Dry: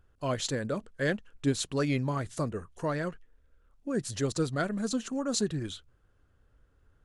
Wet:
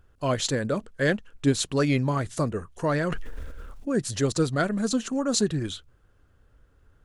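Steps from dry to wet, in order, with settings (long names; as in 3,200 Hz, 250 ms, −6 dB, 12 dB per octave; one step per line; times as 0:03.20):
0:02.87–0:03.93: level that may fall only so fast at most 21 dB per second
level +5.5 dB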